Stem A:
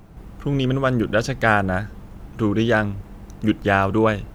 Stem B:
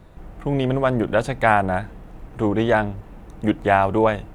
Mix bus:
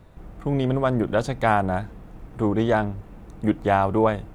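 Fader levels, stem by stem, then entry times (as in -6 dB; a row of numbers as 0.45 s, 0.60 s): -13.5 dB, -3.5 dB; 0.00 s, 0.00 s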